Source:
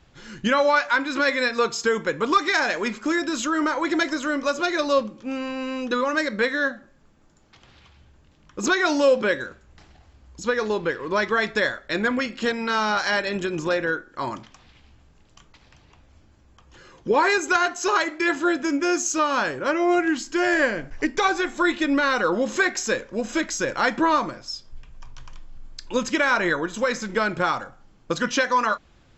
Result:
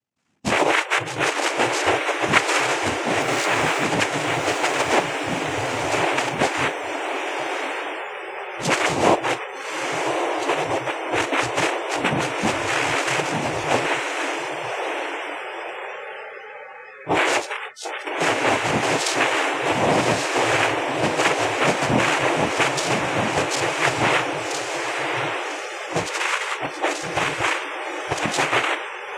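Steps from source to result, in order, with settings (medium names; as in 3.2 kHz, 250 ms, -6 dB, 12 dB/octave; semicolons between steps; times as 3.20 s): cycle switcher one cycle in 3, muted; 26.10–26.61 s: high-pass 1.5 kHz; noise-vocoded speech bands 4; 3.21–3.84 s: small samples zeroed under -40 dBFS; echo that smears into a reverb 1132 ms, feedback 59%, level -3.5 dB; 17.40–18.07 s: compression 6:1, threshold -29 dBFS, peak gain reduction 13 dB; multi-head delay 92 ms, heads second and third, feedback 52%, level -22 dB; spectral noise reduction 29 dB; trim +2 dB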